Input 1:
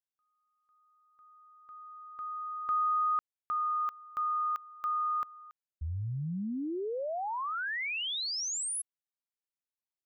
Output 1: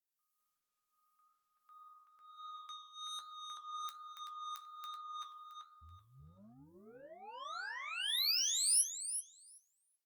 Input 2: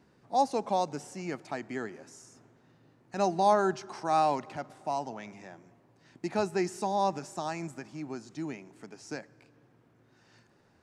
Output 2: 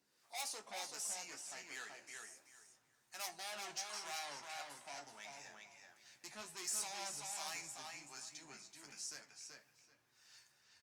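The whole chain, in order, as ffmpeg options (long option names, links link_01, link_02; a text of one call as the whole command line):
ffmpeg -i in.wav -filter_complex "[0:a]acrossover=split=520[link_01][link_02];[link_01]aeval=exprs='val(0)*(1-0.7/2+0.7/2*cos(2*PI*1.4*n/s))':channel_layout=same[link_03];[link_02]aeval=exprs='val(0)*(1-0.7/2-0.7/2*cos(2*PI*1.4*n/s))':channel_layout=same[link_04];[link_03][link_04]amix=inputs=2:normalize=0,asoftclip=type=tanh:threshold=-35dB,aderivative,asplit=2[link_05][link_06];[link_06]adelay=381,lowpass=frequency=4600:poles=1,volume=-3dB,asplit=2[link_07][link_08];[link_08]adelay=381,lowpass=frequency=4600:poles=1,volume=0.23,asplit=2[link_09][link_10];[link_10]adelay=381,lowpass=frequency=4600:poles=1,volume=0.23[link_11];[link_05][link_07][link_09][link_11]amix=inputs=4:normalize=0,asubboost=boost=5:cutoff=120,flanger=delay=8.3:depth=1.7:regen=-61:speed=0.31:shape=sinusoidal,asplit=2[link_12][link_13];[link_13]adelay=14,volume=-10dB[link_14];[link_12][link_14]amix=inputs=2:normalize=0,flanger=delay=9.7:depth=6.6:regen=74:speed=1.2:shape=triangular,volume=16.5dB" -ar 48000 -c:a libopus -b:a 48k out.opus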